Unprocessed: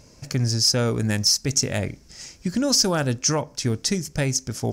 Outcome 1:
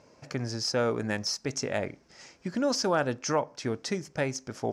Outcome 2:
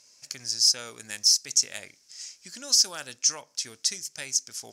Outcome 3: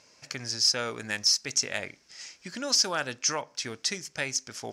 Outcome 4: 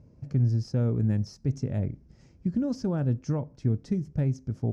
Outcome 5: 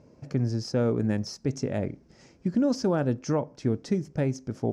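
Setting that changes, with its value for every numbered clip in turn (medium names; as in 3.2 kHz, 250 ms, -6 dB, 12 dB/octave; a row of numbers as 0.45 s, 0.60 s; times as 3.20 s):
band-pass filter, frequency: 850 Hz, 7.1 kHz, 2.4 kHz, 110 Hz, 320 Hz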